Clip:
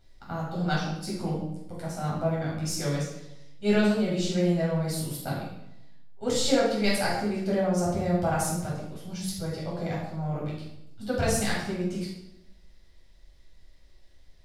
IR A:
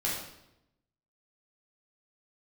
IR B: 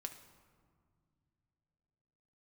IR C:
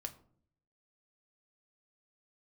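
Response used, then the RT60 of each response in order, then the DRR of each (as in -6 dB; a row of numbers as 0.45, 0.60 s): A; 0.85 s, not exponential, 0.55 s; -7.0, 5.0, 6.0 dB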